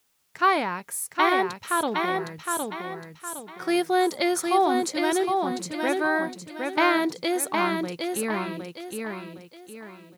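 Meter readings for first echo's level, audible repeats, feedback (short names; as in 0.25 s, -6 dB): -4.0 dB, 4, 36%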